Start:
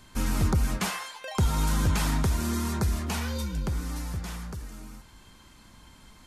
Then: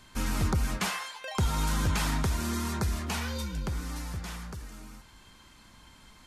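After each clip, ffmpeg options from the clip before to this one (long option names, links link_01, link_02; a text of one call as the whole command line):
ffmpeg -i in.wav -af "equalizer=frequency=2400:width=0.32:gain=4,volume=-3.5dB" out.wav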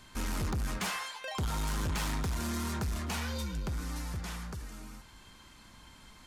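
ffmpeg -i in.wav -af "asoftclip=type=tanh:threshold=-29dB" out.wav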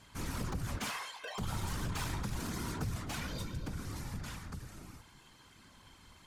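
ffmpeg -i in.wav -af "afftfilt=real='hypot(re,im)*cos(2*PI*random(0))':imag='hypot(re,im)*sin(2*PI*random(1))':win_size=512:overlap=0.75,volume=2dB" out.wav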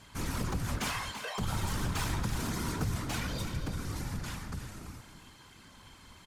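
ffmpeg -i in.wav -af "aecho=1:1:224|336:0.126|0.299,volume=4dB" out.wav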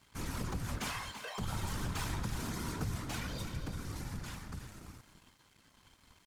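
ffmpeg -i in.wav -af "aeval=exprs='sgn(val(0))*max(abs(val(0))-0.0015,0)':channel_layout=same,volume=-4dB" out.wav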